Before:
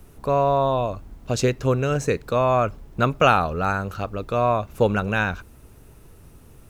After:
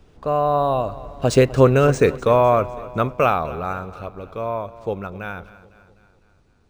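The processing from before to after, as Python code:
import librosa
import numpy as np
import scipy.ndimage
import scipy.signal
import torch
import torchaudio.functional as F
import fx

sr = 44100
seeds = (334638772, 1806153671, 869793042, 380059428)

p1 = fx.doppler_pass(x, sr, speed_mps=18, closest_m=10.0, pass_at_s=1.71)
p2 = fx.peak_eq(p1, sr, hz=610.0, db=3.5, octaves=2.3)
p3 = p2 + fx.echo_feedback(p2, sr, ms=252, feedback_pct=54, wet_db=-17.5, dry=0)
p4 = np.interp(np.arange(len(p3)), np.arange(len(p3))[::3], p3[::3])
y = p4 * librosa.db_to_amplitude(5.5)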